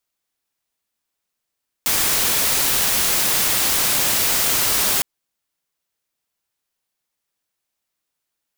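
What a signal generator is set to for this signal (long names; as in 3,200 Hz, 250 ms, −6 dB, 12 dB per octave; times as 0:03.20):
noise white, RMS −18.5 dBFS 3.16 s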